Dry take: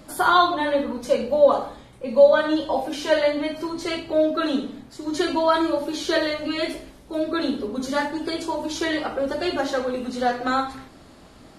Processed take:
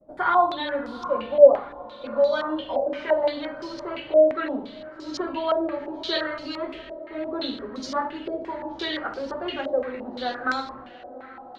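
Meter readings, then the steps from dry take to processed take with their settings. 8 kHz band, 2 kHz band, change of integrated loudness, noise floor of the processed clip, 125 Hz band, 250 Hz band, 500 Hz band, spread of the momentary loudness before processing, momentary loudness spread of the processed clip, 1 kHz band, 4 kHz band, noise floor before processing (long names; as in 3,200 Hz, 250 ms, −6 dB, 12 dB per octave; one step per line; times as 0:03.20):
below −10 dB, −4.0 dB, −2.0 dB, −43 dBFS, can't be measured, −6.5 dB, −1.0 dB, 11 LU, 17 LU, −3.5 dB, −4.0 dB, −48 dBFS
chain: downward expander −40 dBFS
feedback delay with all-pass diffusion 734 ms, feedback 56%, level −15.5 dB
low-pass on a step sequencer 5.8 Hz 610–5,200 Hz
level −7.5 dB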